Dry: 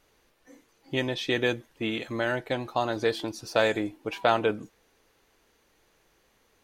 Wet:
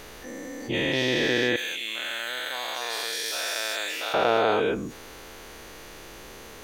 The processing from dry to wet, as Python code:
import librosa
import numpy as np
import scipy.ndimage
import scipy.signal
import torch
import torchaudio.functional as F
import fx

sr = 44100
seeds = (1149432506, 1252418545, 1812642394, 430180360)

y = fx.spec_dilate(x, sr, span_ms=480)
y = fx.differentiator(y, sr, at=(1.56, 4.14))
y = fx.env_flatten(y, sr, amount_pct=50)
y = F.gain(torch.from_numpy(y), -6.5).numpy()